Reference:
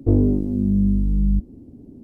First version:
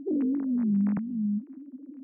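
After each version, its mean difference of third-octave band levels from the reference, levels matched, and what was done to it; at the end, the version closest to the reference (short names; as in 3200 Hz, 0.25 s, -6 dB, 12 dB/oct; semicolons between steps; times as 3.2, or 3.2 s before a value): 6.5 dB: sine-wave speech; bell 270 Hz +3.5 dB; compressor 2:1, threshold -20 dBFS, peak gain reduction 6 dB; gain -7 dB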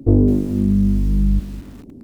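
5.0 dB: on a send: thinning echo 0.125 s, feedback 82%, high-pass 790 Hz, level -14 dB; on the sum: lo-fi delay 0.214 s, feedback 35%, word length 6-bit, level -13.5 dB; gain +3 dB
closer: second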